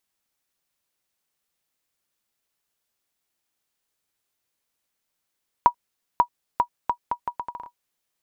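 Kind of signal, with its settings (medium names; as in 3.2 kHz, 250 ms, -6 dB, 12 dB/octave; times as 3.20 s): bouncing ball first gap 0.54 s, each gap 0.74, 964 Hz, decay 84 ms -4 dBFS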